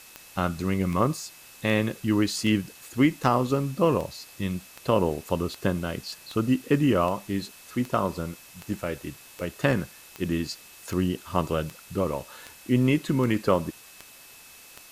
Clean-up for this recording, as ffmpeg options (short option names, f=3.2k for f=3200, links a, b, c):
-af "adeclick=t=4,bandreject=f=2.6k:w=30,afftdn=nr=21:nf=-49"